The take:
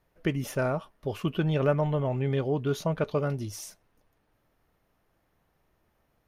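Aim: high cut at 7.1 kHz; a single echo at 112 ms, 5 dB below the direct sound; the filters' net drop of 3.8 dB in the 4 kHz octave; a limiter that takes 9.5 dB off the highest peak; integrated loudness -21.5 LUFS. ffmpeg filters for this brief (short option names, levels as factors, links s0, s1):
-af "lowpass=7100,equalizer=f=4000:t=o:g=-5,alimiter=limit=0.0708:level=0:latency=1,aecho=1:1:112:0.562,volume=3.35"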